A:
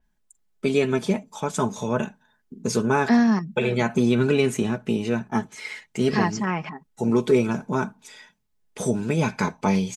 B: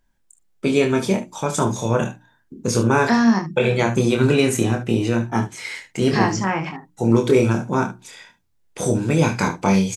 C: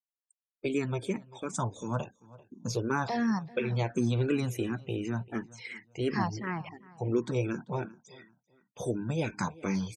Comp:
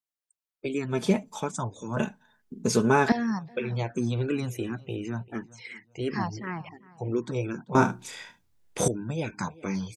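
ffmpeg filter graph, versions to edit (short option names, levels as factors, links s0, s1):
-filter_complex "[0:a]asplit=2[s0][s1];[2:a]asplit=4[s2][s3][s4][s5];[s2]atrim=end=1.04[s6];[s0]atrim=start=0.88:end=1.54[s7];[s3]atrim=start=1.38:end=1.972[s8];[s1]atrim=start=1.968:end=3.122[s9];[s4]atrim=start=3.118:end=7.752[s10];[1:a]atrim=start=7.748:end=8.882[s11];[s5]atrim=start=8.878[s12];[s6][s7]acrossfade=d=0.16:c1=tri:c2=tri[s13];[s13][s8]acrossfade=d=0.16:c1=tri:c2=tri[s14];[s14][s9]acrossfade=d=0.004:c1=hsin:c2=hsin[s15];[s15][s10]acrossfade=d=0.004:c1=hsin:c2=hsin[s16];[s16][s11]acrossfade=d=0.004:c1=hsin:c2=hsin[s17];[s17][s12]acrossfade=d=0.004:c1=hsin:c2=hsin"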